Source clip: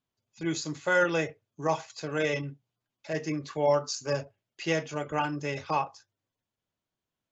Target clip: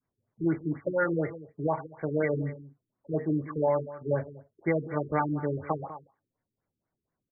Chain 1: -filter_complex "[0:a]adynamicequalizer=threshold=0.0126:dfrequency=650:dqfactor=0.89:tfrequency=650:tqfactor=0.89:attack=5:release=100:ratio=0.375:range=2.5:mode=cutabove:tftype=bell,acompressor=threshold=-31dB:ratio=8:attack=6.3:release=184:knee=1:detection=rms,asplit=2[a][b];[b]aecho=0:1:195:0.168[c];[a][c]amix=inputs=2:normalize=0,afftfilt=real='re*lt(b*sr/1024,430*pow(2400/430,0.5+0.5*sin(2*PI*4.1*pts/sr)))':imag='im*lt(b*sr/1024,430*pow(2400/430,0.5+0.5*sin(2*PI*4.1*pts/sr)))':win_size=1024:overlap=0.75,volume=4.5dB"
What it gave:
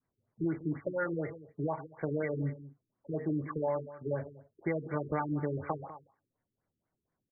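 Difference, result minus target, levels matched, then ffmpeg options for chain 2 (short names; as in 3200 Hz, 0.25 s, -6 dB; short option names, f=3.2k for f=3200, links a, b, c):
compressor: peak gain reduction +6.5 dB
-filter_complex "[0:a]adynamicequalizer=threshold=0.0126:dfrequency=650:dqfactor=0.89:tfrequency=650:tqfactor=0.89:attack=5:release=100:ratio=0.375:range=2.5:mode=cutabove:tftype=bell,acompressor=threshold=-23.5dB:ratio=8:attack=6.3:release=184:knee=1:detection=rms,asplit=2[a][b];[b]aecho=0:1:195:0.168[c];[a][c]amix=inputs=2:normalize=0,afftfilt=real='re*lt(b*sr/1024,430*pow(2400/430,0.5+0.5*sin(2*PI*4.1*pts/sr)))':imag='im*lt(b*sr/1024,430*pow(2400/430,0.5+0.5*sin(2*PI*4.1*pts/sr)))':win_size=1024:overlap=0.75,volume=4.5dB"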